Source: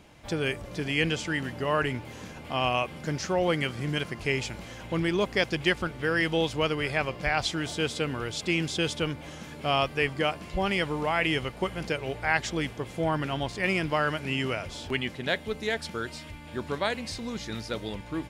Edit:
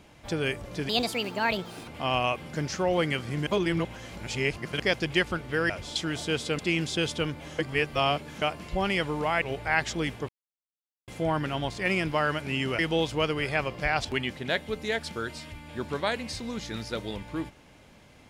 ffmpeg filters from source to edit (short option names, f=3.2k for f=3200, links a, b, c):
-filter_complex "[0:a]asplit=14[a][b][c][d][e][f][g][h][i][j][k][l][m][n];[a]atrim=end=0.894[o];[b]atrim=start=0.89:end=2.38,asetpts=PTS-STARTPTS,asetrate=66591,aresample=44100[p];[c]atrim=start=2.376:end=3.972[q];[d]atrim=start=3.968:end=5.302,asetpts=PTS-STARTPTS,areverse[r];[e]atrim=start=5.298:end=6.202[s];[f]atrim=start=14.568:end=14.832[t];[g]atrim=start=7.458:end=8.092[u];[h]atrim=start=8.398:end=9.402[v];[i]atrim=start=9.398:end=10.232,asetpts=PTS-STARTPTS,areverse[w];[j]atrim=start=10.228:end=11.232[x];[k]atrim=start=11.988:end=12.86,asetpts=PTS-STARTPTS,afade=t=out:st=0.868:d=0.004:c=hsin,apad=pad_dur=0.79[y];[l]atrim=start=12.86:end=14.572,asetpts=PTS-STARTPTS,afade=t=in:d=0.004:c=hsin[z];[m]atrim=start=6.198:end=7.462[aa];[n]atrim=start=14.828[ab];[o][p]acrossfade=d=0.004:c1=hsin:c2=hsin[ac];[ac][q]acrossfade=d=0.004:c1=hsin:c2=hsin[ad];[ad][r]acrossfade=d=0.004:c1=hsin:c2=hsin[ae];[ae][s]acrossfade=d=0.004:c1=hsin:c2=hsin[af];[af][t]acrossfade=d=0.004:c1=hsin:c2=hsin[ag];[ag][u]acrossfade=d=0.004:c1=hsin:c2=hsin[ah];[ah][v]acrossfade=d=0.004:c1=hsin:c2=hsin[ai];[ai][w]acrossfade=d=0.004:c1=hsin:c2=hsin[aj];[aj][x]acrossfade=d=0.004:c1=hsin:c2=hsin[ak];[y][z]concat=n=2:v=0:a=1[al];[ak][al]acrossfade=d=0.004:c1=hsin:c2=hsin[am];[am][aa]acrossfade=d=0.004:c1=hsin:c2=hsin[an];[an][ab]acrossfade=d=0.004:c1=hsin:c2=hsin"